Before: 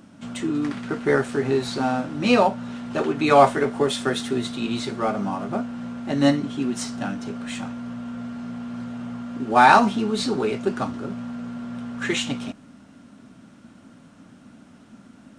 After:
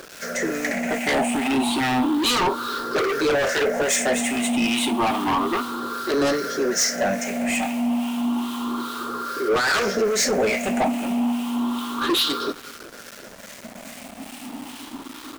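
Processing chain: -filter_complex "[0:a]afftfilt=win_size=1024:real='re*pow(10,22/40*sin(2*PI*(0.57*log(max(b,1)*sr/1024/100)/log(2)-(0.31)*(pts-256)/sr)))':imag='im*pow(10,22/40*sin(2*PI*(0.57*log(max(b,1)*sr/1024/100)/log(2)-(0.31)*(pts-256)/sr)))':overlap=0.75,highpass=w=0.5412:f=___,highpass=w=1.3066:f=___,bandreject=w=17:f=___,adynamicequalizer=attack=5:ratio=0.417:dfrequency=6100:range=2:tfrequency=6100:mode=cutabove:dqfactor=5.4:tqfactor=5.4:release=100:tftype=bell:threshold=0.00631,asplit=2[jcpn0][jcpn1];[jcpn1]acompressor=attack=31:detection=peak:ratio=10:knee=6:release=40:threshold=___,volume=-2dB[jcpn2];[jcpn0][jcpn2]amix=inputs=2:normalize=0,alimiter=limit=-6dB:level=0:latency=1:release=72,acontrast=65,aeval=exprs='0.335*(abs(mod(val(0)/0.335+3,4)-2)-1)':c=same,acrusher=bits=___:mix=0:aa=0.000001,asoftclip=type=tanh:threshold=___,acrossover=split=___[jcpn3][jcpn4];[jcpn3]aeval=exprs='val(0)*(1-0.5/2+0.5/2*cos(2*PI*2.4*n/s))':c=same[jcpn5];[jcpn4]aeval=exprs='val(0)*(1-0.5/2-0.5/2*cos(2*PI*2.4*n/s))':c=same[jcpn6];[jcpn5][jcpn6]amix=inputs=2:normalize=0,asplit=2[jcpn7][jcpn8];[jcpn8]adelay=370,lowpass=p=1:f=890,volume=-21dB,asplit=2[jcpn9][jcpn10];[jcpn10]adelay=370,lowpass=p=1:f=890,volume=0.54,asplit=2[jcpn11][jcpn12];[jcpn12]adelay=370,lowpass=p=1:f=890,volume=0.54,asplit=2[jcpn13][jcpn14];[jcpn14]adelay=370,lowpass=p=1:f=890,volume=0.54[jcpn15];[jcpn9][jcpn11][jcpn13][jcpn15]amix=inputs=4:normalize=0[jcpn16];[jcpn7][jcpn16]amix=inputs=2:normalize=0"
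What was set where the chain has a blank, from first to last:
290, 290, 7600, -28dB, 5, -15dB, 1200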